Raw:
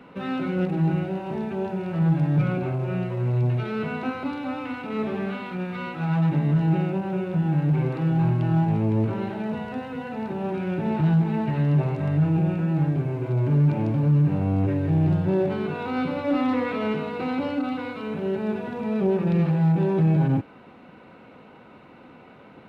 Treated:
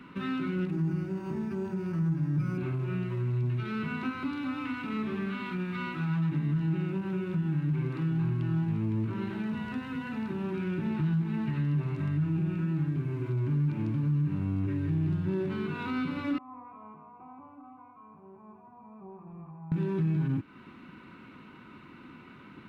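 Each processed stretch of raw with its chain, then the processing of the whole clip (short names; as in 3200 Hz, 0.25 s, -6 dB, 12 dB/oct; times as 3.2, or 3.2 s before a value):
0.72–2.58 high shelf 2100 Hz -5.5 dB + decimation joined by straight lines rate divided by 6×
16.38–19.72 vocal tract filter a + low shelf 98 Hz +11 dB
whole clip: band shelf 610 Hz -14 dB 1.1 oct; compressor 2:1, threshold -32 dBFS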